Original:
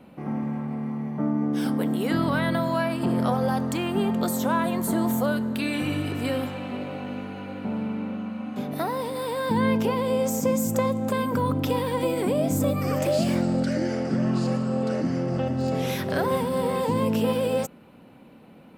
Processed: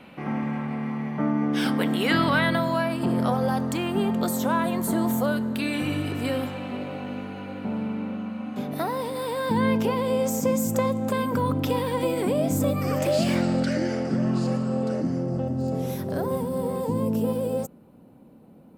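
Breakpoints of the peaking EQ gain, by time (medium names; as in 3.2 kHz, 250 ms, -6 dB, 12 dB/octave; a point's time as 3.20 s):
peaking EQ 2.5 kHz 2.4 oct
2.20 s +11 dB
2.83 s 0 dB
12.98 s 0 dB
13.46 s +7 dB
14.21 s -2.5 dB
14.73 s -2.5 dB
15.40 s -14.5 dB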